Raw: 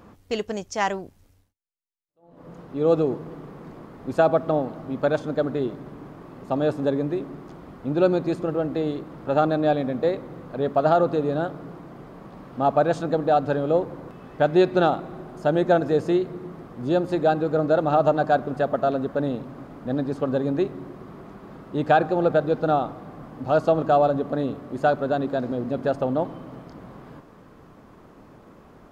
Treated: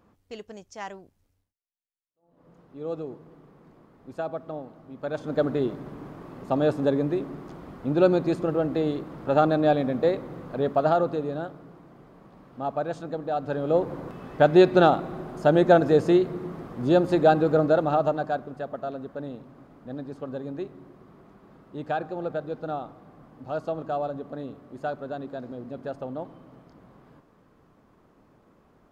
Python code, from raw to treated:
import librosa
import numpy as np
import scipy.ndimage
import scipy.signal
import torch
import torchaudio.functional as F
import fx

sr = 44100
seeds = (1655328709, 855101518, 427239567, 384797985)

y = fx.gain(x, sr, db=fx.line((4.97, -13.0), (5.39, 0.0), (10.54, 0.0), (11.66, -9.0), (13.32, -9.0), (13.93, 2.0), (17.51, 2.0), (18.55, -10.5)))